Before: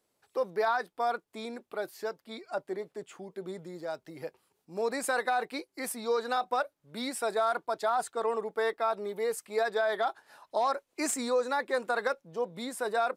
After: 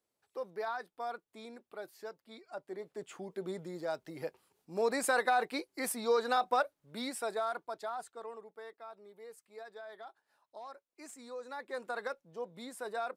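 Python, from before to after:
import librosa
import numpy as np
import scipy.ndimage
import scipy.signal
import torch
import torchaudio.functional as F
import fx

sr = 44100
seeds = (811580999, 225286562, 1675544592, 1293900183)

y = fx.gain(x, sr, db=fx.line((2.62, -9.5), (3.11, 0.0), (6.59, 0.0), (7.78, -9.5), (8.69, -19.5), (11.14, -19.5), (11.85, -8.5)))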